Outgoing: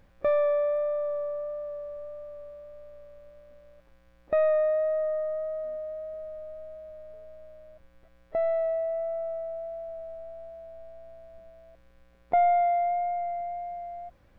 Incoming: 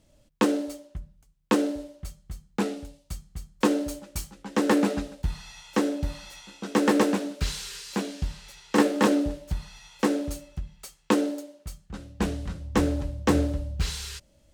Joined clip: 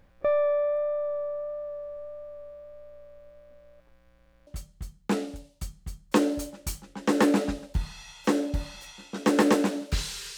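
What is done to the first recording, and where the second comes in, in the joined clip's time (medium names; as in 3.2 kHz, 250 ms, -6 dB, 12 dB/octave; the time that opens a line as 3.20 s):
outgoing
4.12 s: stutter in place 0.07 s, 5 plays
4.47 s: go over to incoming from 1.96 s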